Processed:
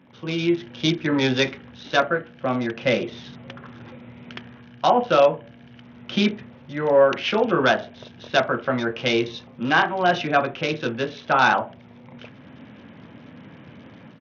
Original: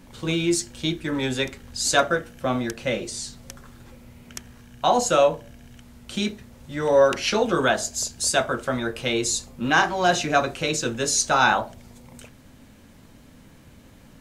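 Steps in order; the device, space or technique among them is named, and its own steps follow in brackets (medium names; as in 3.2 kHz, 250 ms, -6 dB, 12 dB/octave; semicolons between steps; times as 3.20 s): Bluetooth headset (high-pass 110 Hz 24 dB/octave; level rider gain up to 11.5 dB; resampled via 8 kHz; trim -4 dB; SBC 64 kbps 48 kHz)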